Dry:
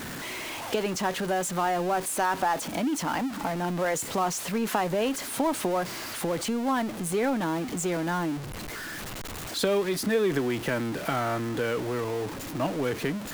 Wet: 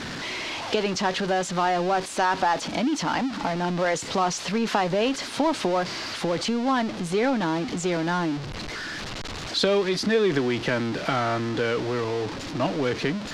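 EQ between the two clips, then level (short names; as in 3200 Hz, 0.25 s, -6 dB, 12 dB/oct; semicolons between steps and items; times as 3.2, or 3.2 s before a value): synth low-pass 4800 Hz, resonance Q 1.6; +3.0 dB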